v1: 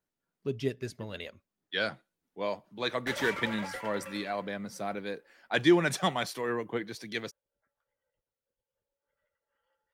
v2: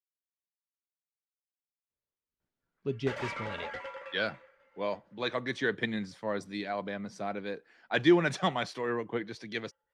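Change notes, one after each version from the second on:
speech: entry +2.40 s
master: add high-frequency loss of the air 93 metres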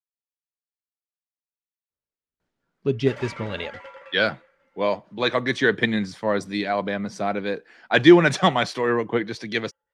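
speech +10.5 dB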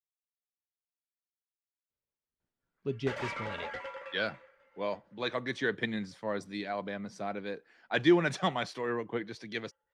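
speech −11.5 dB

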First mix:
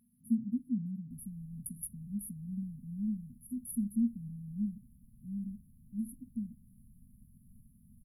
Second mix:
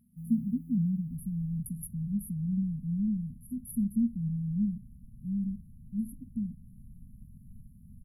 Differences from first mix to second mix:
speech: remove EQ curve with evenly spaced ripples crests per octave 0.96, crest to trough 7 dB
first sound: unmuted
master: add bass and treble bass +10 dB, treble −2 dB

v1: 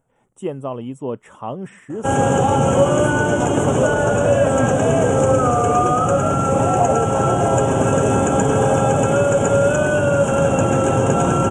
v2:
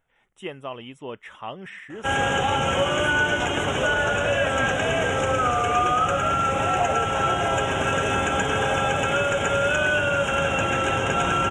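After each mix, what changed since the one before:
master: add octave-band graphic EQ 125/250/500/1,000/2,000/4,000/8,000 Hz −11/−9/−7/−5/+8/+9/−12 dB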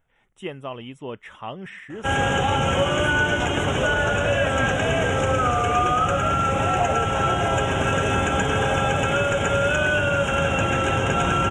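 master: add low-shelf EQ 240 Hz +6.5 dB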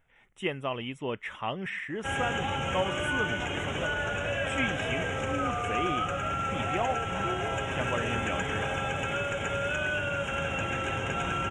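background −11.0 dB
master: add parametric band 2,200 Hz +6 dB 0.85 octaves

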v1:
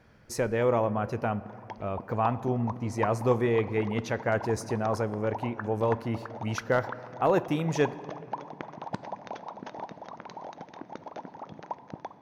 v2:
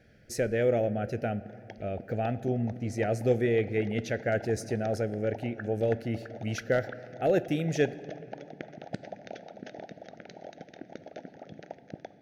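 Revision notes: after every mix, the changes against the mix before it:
master: add Chebyshev band-stop filter 670–1,600 Hz, order 2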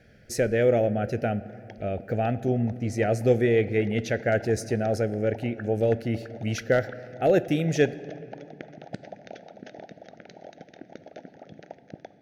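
speech +4.5 dB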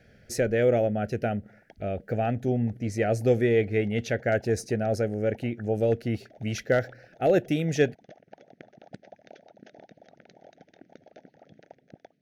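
background −6.0 dB
reverb: off

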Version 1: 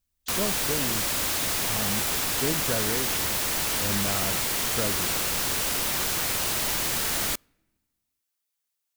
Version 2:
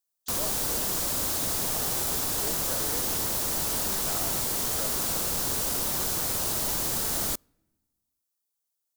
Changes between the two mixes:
speech: add Bessel high-pass filter 830 Hz
master: add parametric band 2,300 Hz −10.5 dB 1.5 octaves

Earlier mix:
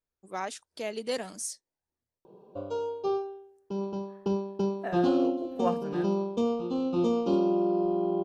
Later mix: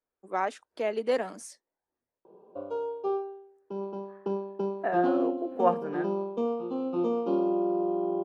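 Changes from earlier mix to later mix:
speech +6.0 dB
master: add three-way crossover with the lows and the highs turned down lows −14 dB, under 230 Hz, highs −16 dB, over 2,300 Hz

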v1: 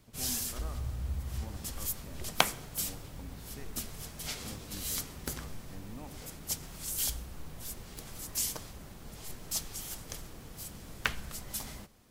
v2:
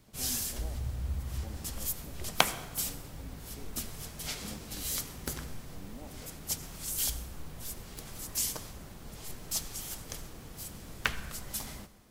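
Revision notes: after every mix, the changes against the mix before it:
speech: add Chebyshev band-pass filter 190–840 Hz, order 4
background: send +9.0 dB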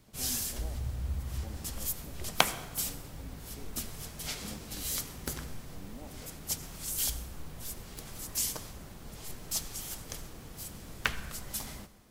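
nothing changed

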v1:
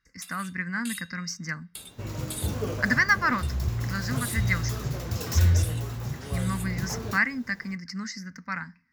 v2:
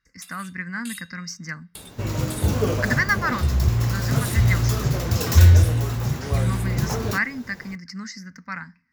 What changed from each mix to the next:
second sound +8.5 dB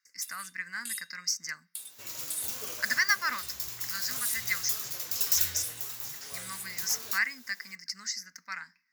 speech +7.5 dB
master: add first difference

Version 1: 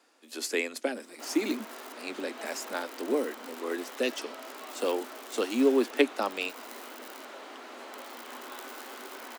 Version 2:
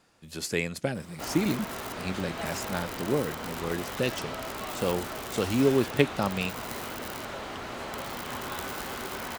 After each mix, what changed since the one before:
background +7.0 dB
master: remove Butterworth high-pass 240 Hz 72 dB per octave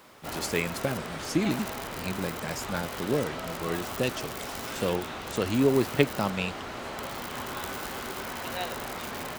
background: entry −0.95 s

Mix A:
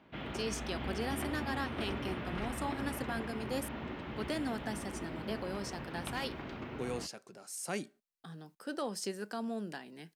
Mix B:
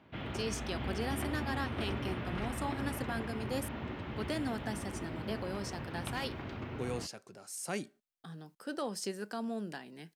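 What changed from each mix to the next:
master: add parametric band 100 Hz +12.5 dB 0.43 octaves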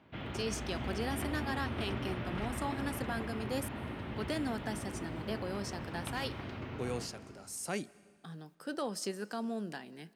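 background −4.0 dB
reverb: on, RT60 1.9 s

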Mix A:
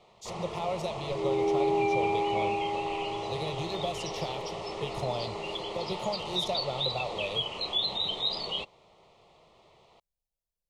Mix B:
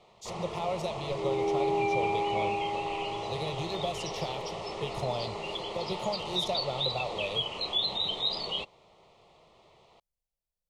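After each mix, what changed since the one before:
second sound: add parametric band 190 Hz −7 dB 1.5 octaves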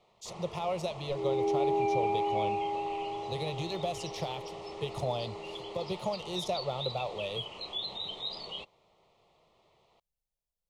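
first sound −7.5 dB

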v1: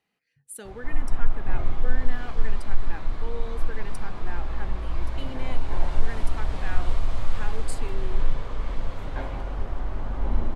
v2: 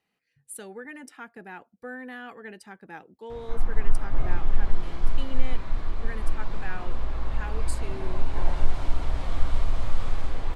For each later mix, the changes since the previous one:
background: entry +2.65 s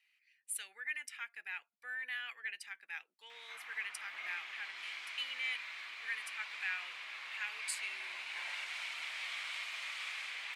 master: add high-pass with resonance 2,300 Hz, resonance Q 3.2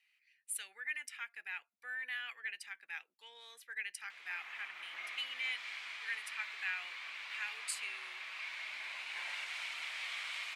background: entry +0.80 s

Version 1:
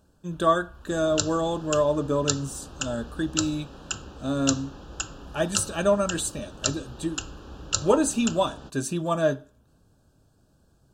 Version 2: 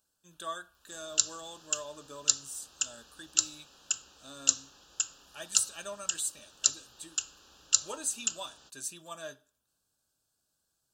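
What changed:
speech: add high-shelf EQ 6,500 Hz −5.5 dB
second sound +3.5 dB
master: add first-order pre-emphasis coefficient 0.97

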